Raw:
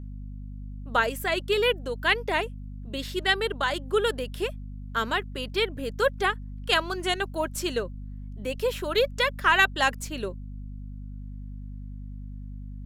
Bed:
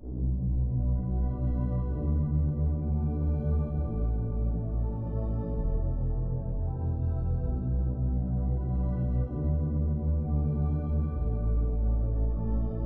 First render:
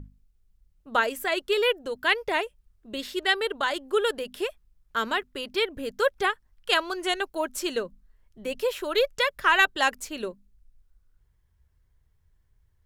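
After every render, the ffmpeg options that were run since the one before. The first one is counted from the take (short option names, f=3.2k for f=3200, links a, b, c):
-af "bandreject=f=50:t=h:w=6,bandreject=f=100:t=h:w=6,bandreject=f=150:t=h:w=6,bandreject=f=200:t=h:w=6,bandreject=f=250:t=h:w=6"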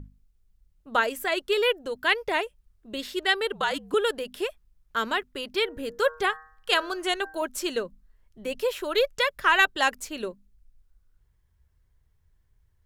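-filter_complex "[0:a]asettb=1/sr,asplit=3[a][b][c];[a]atrim=end=3.524[d];[b]atrim=start=3.52:end=3.94,asetpts=PTS-STARTPTS,afade=t=in:d=0.004:c=qsin,afade=t=out:st=0.416:d=0.004:c=qsin,afreqshift=-66[e];[c]atrim=start=3.936[f];[d][e]acrossfade=d=0.004:c1=hsin:c2=qsin[g];[g][f]acrossfade=d=0.004:c1=qsin:c2=hsin,asettb=1/sr,asplit=3[h][i][j];[h]atrim=end=5.624[k];[i]atrim=start=5.62:end=7.42,asetpts=PTS-STARTPTS,afade=t=in:d=0.004:c=qsin,afade=t=out:st=1.796:d=0.004:c=qsin,bandreject=f=157.1:t=h:w=4,bandreject=f=314.2:t=h:w=4,bandreject=f=471.3:t=h:w=4,bandreject=f=628.4:t=h:w=4,bandreject=f=785.5:t=h:w=4,bandreject=f=942.6:t=h:w=4,bandreject=f=1.0997k:t=h:w=4,bandreject=f=1.2568k:t=h:w=4,bandreject=f=1.4139k:t=h:w=4,bandreject=f=1.571k:t=h:w=4,bandreject=f=1.7281k:t=h:w=4,bandreject=f=1.8852k:t=h:w=4[l];[j]atrim=start=7.416[m];[k][l]acrossfade=d=0.004:c1=hsin:c2=qsin[n];[n][m]acrossfade=d=0.004:c1=qsin:c2=hsin"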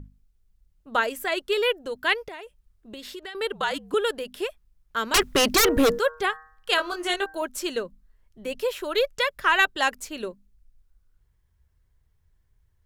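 -filter_complex "[0:a]asettb=1/sr,asplit=3[a][b][c];[a]atrim=end=2.284[d];[b]atrim=start=2.28:end=3.35,asetpts=PTS-STARTPTS,afade=t=in:d=0.004:c=qsin,afade=t=out:st=1.066:d=0.004:c=qsin,acompressor=threshold=-34dB:ratio=12:attack=3.2:release=140:knee=1:detection=peak[e];[c]atrim=start=3.346[f];[d][e]acrossfade=d=0.004:c1=hsin:c2=qsin[g];[g][f]acrossfade=d=0.004:c1=qsin:c2=hsin,asettb=1/sr,asplit=3[h][i][j];[h]atrim=end=5.144[k];[i]atrim=start=5.14:end=5.99,asetpts=PTS-STARTPTS,afade=t=in:d=0.004:c=qsin,afade=t=out:st=0.846:d=0.004:c=qsin,aeval=exprs='0.188*sin(PI/2*5.62*val(0)/0.188)':c=same[l];[j]atrim=start=5.986[m];[k][l]acrossfade=d=0.004:c1=hsin:c2=qsin[n];[n][m]acrossfade=d=0.004:c1=qsin:c2=hsin,asettb=1/sr,asplit=3[o][p][q];[o]atrim=end=6.764[r];[p]atrim=start=6.76:end=7.26,asetpts=PTS-STARTPTS,afade=t=in:d=0.004:c=qsin,afade=t=out:st=0.496:d=0.004:c=qsin,asplit=2[s][t];[t]adelay=20,volume=-4dB[u];[s][u]amix=inputs=2:normalize=0,atrim=end_sample=22050[v];[q]atrim=start=7.256[w];[r][v]acrossfade=d=0.004:c1=hsin:c2=qsin[x];[x][w]acrossfade=d=0.004:c1=qsin:c2=hsin"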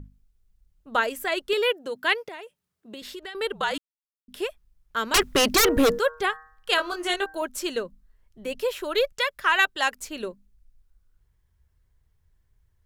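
-filter_complex "[0:a]asettb=1/sr,asplit=3[a][b][c];[a]atrim=end=1.534[d];[b]atrim=start=1.53:end=3.02,asetpts=PTS-STARTPTS,afade=t=in:d=0.004:c=qsin,afade=t=out:st=1.486:d=0.004:c=qsin,highpass=f=130:w=0.5412,highpass=f=130:w=1.3066[e];[c]atrim=start=3.016[f];[d][e]acrossfade=d=0.004:c1=hsin:c2=qsin[g];[g][f]acrossfade=d=0.004:c1=qsin:c2=hsin,asettb=1/sr,asplit=3[h][i][j];[h]atrim=end=9.124[k];[i]atrim=start=9.12:end=10.01,asetpts=PTS-STARTPTS,afade=t=in:d=0.004:c=qsin,afade=t=out:st=0.886:d=0.004:c=qsin,lowshelf=f=440:g=-7.5[l];[j]atrim=start=10.006[m];[k][l]acrossfade=d=0.004:c1=hsin:c2=qsin[n];[n][m]acrossfade=d=0.004:c1=qsin:c2=hsin,asplit=3[o][p][q];[o]atrim=end=3.78,asetpts=PTS-STARTPTS,afade=t=out:st=3.776:d=0.004:c=hsin[r];[p]atrim=start=3.78:end=4.28,asetpts=PTS-STARTPTS,volume=0[s];[q]atrim=start=4.28,asetpts=PTS-STARTPTS,afade=t=in:d=0.004:c=hsin[t];[r][s][t]concat=n=3:v=0:a=1"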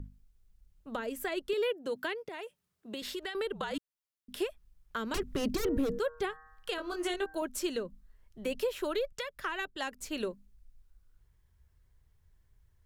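-filter_complex "[0:a]acrossover=split=390[a][b];[b]acompressor=threshold=-34dB:ratio=10[c];[a][c]amix=inputs=2:normalize=0,alimiter=limit=-23dB:level=0:latency=1:release=147"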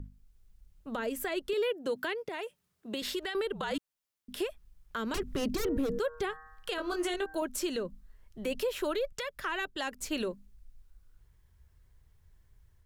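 -af "dynaudnorm=f=160:g=3:m=4dB,alimiter=limit=-24dB:level=0:latency=1:release=80"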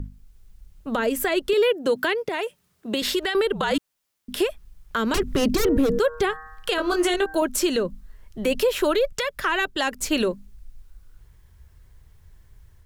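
-af "volume=11dB"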